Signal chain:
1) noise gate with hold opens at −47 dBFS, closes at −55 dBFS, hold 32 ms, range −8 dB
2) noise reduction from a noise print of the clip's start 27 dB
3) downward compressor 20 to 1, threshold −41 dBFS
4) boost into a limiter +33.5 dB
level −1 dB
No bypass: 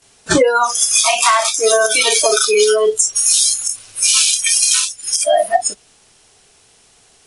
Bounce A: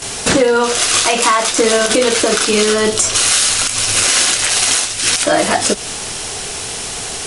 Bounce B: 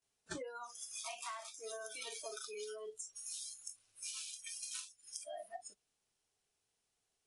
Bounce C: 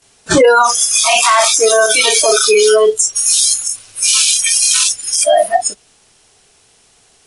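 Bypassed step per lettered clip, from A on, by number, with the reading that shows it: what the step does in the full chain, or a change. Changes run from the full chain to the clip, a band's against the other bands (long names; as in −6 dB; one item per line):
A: 2, 2 kHz band +3.0 dB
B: 4, change in crest factor +11.0 dB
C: 3, average gain reduction 8.0 dB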